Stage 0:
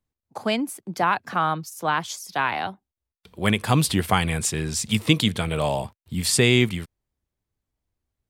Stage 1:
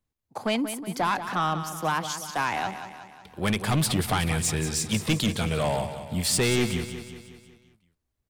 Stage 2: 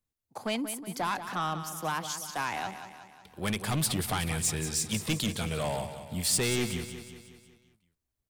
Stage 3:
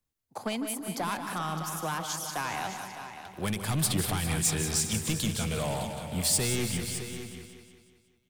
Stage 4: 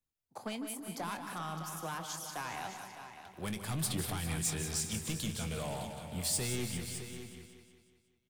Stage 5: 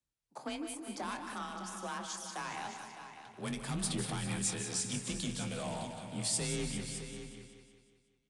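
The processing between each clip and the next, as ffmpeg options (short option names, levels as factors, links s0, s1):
-filter_complex "[0:a]asoftclip=type=tanh:threshold=0.119,asplit=2[s0][s1];[s1]aecho=0:1:183|366|549|732|915|1098:0.299|0.158|0.0839|0.0444|0.0236|0.0125[s2];[s0][s2]amix=inputs=2:normalize=0"
-af "highshelf=f=5200:g=6.5,volume=0.501"
-filter_complex "[0:a]acrossover=split=200|6800[s0][s1][s2];[s1]alimiter=level_in=1.12:limit=0.0631:level=0:latency=1:release=288,volume=0.891[s3];[s0][s3][s2]amix=inputs=3:normalize=0,aecho=1:1:152|400|610:0.282|0.211|0.266,volume=1.26"
-filter_complex "[0:a]asplit=2[s0][s1];[s1]adelay=24,volume=0.224[s2];[s0][s2]amix=inputs=2:normalize=0,volume=0.422"
-af "bandreject=f=78.44:t=h:w=4,bandreject=f=156.88:t=h:w=4,bandreject=f=235.32:t=h:w=4,bandreject=f=313.76:t=h:w=4,bandreject=f=392.2:t=h:w=4,bandreject=f=470.64:t=h:w=4,bandreject=f=549.08:t=h:w=4,bandreject=f=627.52:t=h:w=4,bandreject=f=705.96:t=h:w=4,bandreject=f=784.4:t=h:w=4,bandreject=f=862.84:t=h:w=4,bandreject=f=941.28:t=h:w=4,bandreject=f=1019.72:t=h:w=4,bandreject=f=1098.16:t=h:w=4,bandreject=f=1176.6:t=h:w=4,bandreject=f=1255.04:t=h:w=4,bandreject=f=1333.48:t=h:w=4,bandreject=f=1411.92:t=h:w=4,bandreject=f=1490.36:t=h:w=4,bandreject=f=1568.8:t=h:w=4,bandreject=f=1647.24:t=h:w=4,bandreject=f=1725.68:t=h:w=4,bandreject=f=1804.12:t=h:w=4,bandreject=f=1882.56:t=h:w=4,bandreject=f=1961:t=h:w=4,bandreject=f=2039.44:t=h:w=4,bandreject=f=2117.88:t=h:w=4,bandreject=f=2196.32:t=h:w=4,bandreject=f=2274.76:t=h:w=4,bandreject=f=2353.2:t=h:w=4,bandreject=f=2431.64:t=h:w=4,bandreject=f=2510.08:t=h:w=4,bandreject=f=2588.52:t=h:w=4,bandreject=f=2666.96:t=h:w=4,bandreject=f=2745.4:t=h:w=4,aresample=22050,aresample=44100,afreqshift=31"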